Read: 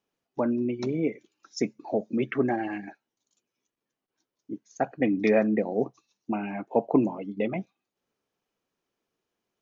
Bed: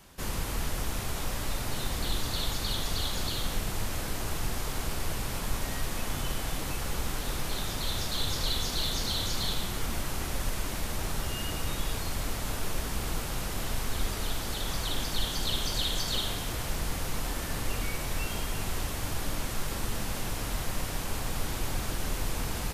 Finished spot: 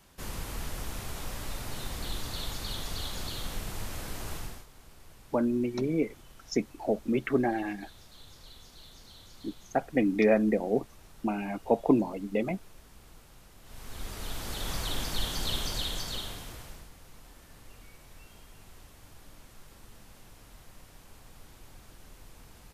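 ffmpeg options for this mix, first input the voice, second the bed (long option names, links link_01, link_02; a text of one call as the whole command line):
ffmpeg -i stem1.wav -i stem2.wav -filter_complex "[0:a]adelay=4950,volume=-1dB[link_01];[1:a]volume=15dB,afade=type=out:start_time=4.34:duration=0.32:silence=0.149624,afade=type=in:start_time=13.63:duration=1.09:silence=0.1,afade=type=out:start_time=15.53:duration=1.37:silence=0.11885[link_02];[link_01][link_02]amix=inputs=2:normalize=0" out.wav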